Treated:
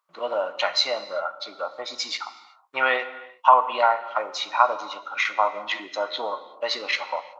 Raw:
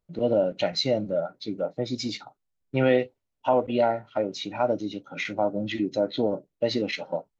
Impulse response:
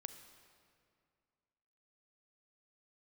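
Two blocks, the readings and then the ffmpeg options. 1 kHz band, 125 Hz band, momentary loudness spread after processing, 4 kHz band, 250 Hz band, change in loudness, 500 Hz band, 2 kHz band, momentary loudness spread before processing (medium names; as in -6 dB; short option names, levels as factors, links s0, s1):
+10.5 dB, under -25 dB, 13 LU, +6.0 dB, -17.5 dB, +2.5 dB, -3.5 dB, +9.0 dB, 9 LU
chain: -filter_complex "[0:a]highpass=f=1100:t=q:w=8.7,asplit=2[s0][s1];[1:a]atrim=start_sample=2205,afade=t=out:st=0.43:d=0.01,atrim=end_sample=19404[s2];[s1][s2]afir=irnorm=-1:irlink=0,volume=3.16[s3];[s0][s3]amix=inputs=2:normalize=0,volume=0.631"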